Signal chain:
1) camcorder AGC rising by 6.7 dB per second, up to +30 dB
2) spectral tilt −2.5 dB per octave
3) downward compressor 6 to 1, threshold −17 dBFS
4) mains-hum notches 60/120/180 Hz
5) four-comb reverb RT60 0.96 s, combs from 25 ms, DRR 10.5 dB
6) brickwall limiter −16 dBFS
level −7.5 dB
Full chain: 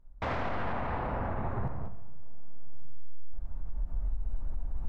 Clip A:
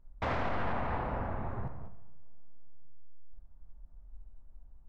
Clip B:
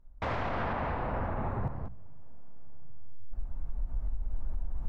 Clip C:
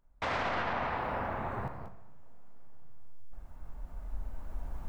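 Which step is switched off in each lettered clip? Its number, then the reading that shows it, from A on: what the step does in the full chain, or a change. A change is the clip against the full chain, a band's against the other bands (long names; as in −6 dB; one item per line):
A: 1, change in crest factor +8.5 dB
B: 5, change in crest factor +3.0 dB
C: 2, 125 Hz band −7.0 dB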